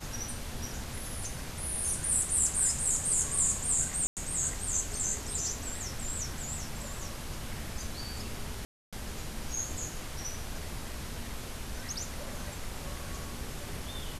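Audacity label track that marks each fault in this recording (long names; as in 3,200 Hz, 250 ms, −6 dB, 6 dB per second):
4.070000	4.170000	drop-out 98 ms
8.650000	8.930000	drop-out 276 ms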